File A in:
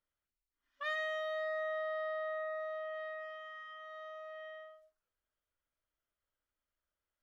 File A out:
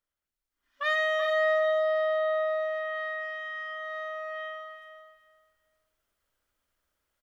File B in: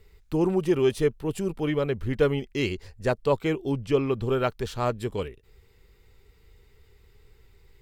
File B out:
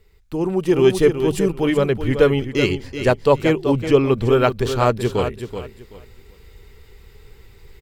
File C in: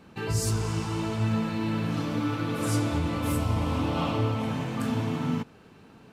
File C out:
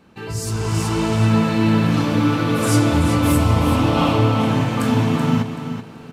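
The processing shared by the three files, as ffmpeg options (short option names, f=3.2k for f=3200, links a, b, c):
-af "bandreject=f=50:t=h:w=6,bandreject=f=100:t=h:w=6,bandreject=f=150:t=h:w=6,aecho=1:1:380|760|1140:0.335|0.0703|0.0148,dynaudnorm=f=460:g=3:m=11dB"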